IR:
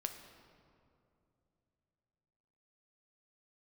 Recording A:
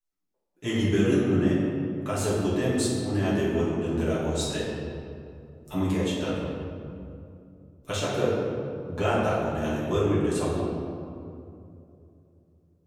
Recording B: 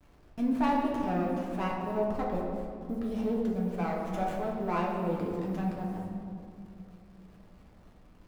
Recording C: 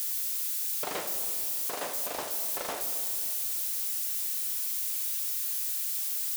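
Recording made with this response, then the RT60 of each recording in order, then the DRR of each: C; 2.6 s, 2.6 s, 2.7 s; -9.5 dB, -3.0 dB, 5.0 dB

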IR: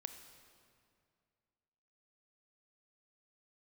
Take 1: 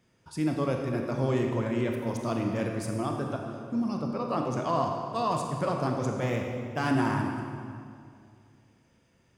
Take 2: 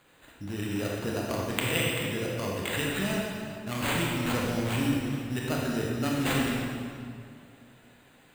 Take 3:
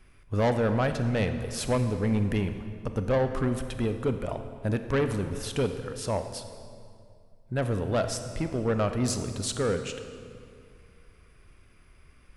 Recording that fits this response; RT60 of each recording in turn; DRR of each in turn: 3; 2.3 s, 2.3 s, 2.3 s; 2.0 dB, -3.0 dB, 8.0 dB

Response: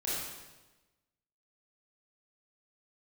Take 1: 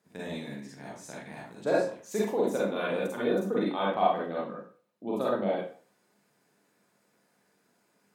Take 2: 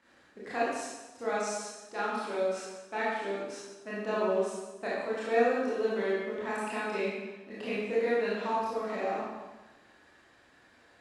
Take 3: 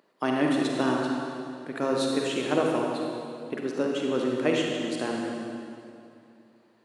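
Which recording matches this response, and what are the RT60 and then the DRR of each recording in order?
2; 0.45 s, 1.1 s, 2.5 s; -6.0 dB, -8.5 dB, -1.0 dB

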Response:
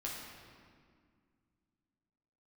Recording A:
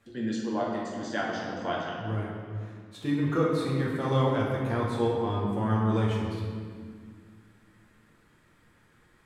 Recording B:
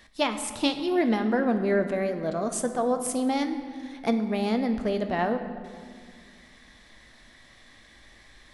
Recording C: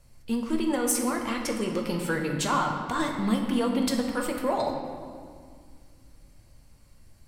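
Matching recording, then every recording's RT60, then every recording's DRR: A; 2.0 s, 2.2 s, 2.0 s; -5.0 dB, 6.5 dB, 1.0 dB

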